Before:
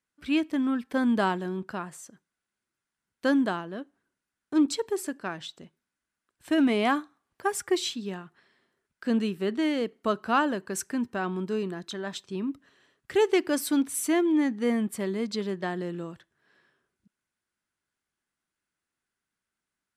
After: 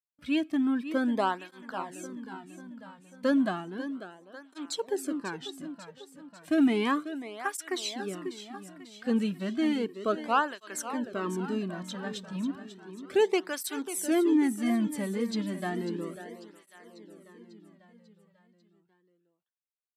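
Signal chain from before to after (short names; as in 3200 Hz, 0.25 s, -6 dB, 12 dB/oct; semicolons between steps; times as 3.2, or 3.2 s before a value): gate with hold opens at -52 dBFS; feedback echo 0.544 s, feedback 57%, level -12 dB; tape flanging out of phase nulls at 0.33 Hz, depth 3.1 ms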